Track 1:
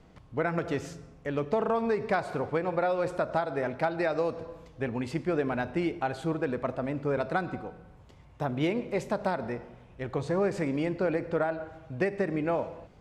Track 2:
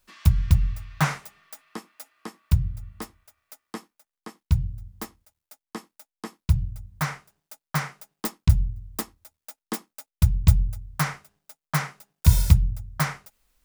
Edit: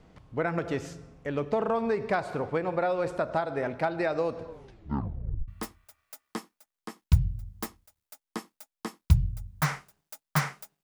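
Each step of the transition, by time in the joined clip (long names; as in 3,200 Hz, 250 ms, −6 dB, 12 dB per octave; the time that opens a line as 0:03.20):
track 1
0:04.47: tape stop 1.01 s
0:05.48: continue with track 2 from 0:02.87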